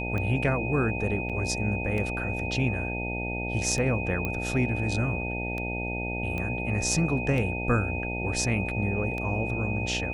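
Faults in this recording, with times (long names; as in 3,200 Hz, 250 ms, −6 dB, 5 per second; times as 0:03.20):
mains buzz 60 Hz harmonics 15 −33 dBFS
scratch tick 33 1/3 rpm −20 dBFS
whistle 2,500 Hz −33 dBFS
0:01.29–0:01.30: drop-out 6.5 ms
0:04.25: click −16 dBFS
0:06.38: click −20 dBFS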